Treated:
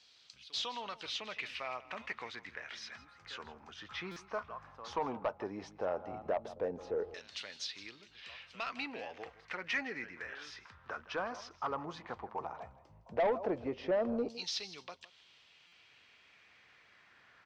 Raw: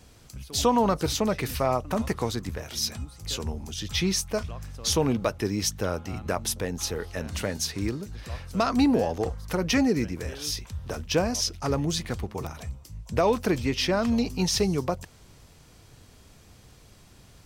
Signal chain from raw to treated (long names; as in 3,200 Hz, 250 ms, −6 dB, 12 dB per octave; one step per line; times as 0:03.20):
high-shelf EQ 10,000 Hz +7 dB
in parallel at −1 dB: downward compressor, threshold −36 dBFS, peak gain reduction 17.5 dB
on the sum: auto-filter band-pass saw down 0.14 Hz 500–4,200 Hz
on a send: single-tap delay 161 ms −18 dB
on the sum: soft clipping −25 dBFS, distortion −12 dB
high-frequency loss of the air 140 metres
buffer that repeats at 0:04.11/0:15.67, samples 256, times 8